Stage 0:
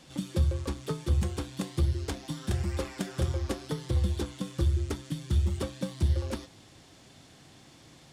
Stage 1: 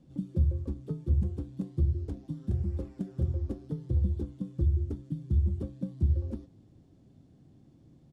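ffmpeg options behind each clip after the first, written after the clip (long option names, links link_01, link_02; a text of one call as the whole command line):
ffmpeg -i in.wav -af "firequalizer=gain_entry='entry(230,0);entry(480,-9);entry(950,-19);entry(2000,-25)':delay=0.05:min_phase=1" out.wav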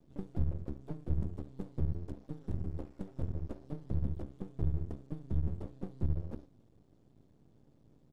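ffmpeg -i in.wav -af "aeval=exprs='max(val(0),0)':channel_layout=same,volume=-2.5dB" out.wav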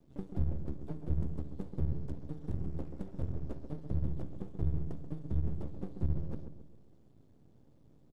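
ffmpeg -i in.wav -filter_complex "[0:a]asplit=2[link_01][link_02];[link_02]adelay=134,lowpass=frequency=1200:poles=1,volume=-7.5dB,asplit=2[link_03][link_04];[link_04]adelay=134,lowpass=frequency=1200:poles=1,volume=0.48,asplit=2[link_05][link_06];[link_06]adelay=134,lowpass=frequency=1200:poles=1,volume=0.48,asplit=2[link_07][link_08];[link_08]adelay=134,lowpass=frequency=1200:poles=1,volume=0.48,asplit=2[link_09][link_10];[link_10]adelay=134,lowpass=frequency=1200:poles=1,volume=0.48,asplit=2[link_11][link_12];[link_12]adelay=134,lowpass=frequency=1200:poles=1,volume=0.48[link_13];[link_01][link_03][link_05][link_07][link_09][link_11][link_13]amix=inputs=7:normalize=0" out.wav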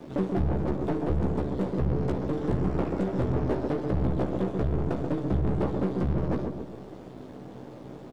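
ffmpeg -i in.wav -filter_complex "[0:a]asplit=2[link_01][link_02];[link_02]highpass=frequency=720:poles=1,volume=31dB,asoftclip=type=tanh:threshold=-19.5dB[link_03];[link_01][link_03]amix=inputs=2:normalize=0,lowpass=frequency=1500:poles=1,volume=-6dB,alimiter=level_in=0.5dB:limit=-24dB:level=0:latency=1:release=500,volume=-0.5dB,asplit=2[link_04][link_05];[link_05]adelay=16,volume=-5.5dB[link_06];[link_04][link_06]amix=inputs=2:normalize=0,volume=6dB" out.wav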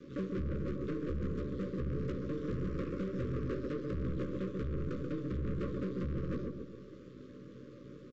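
ffmpeg -i in.wav -af "aresample=16000,asoftclip=type=hard:threshold=-23.5dB,aresample=44100,asuperstop=centerf=790:order=20:qfactor=1.6,volume=-7.5dB" out.wav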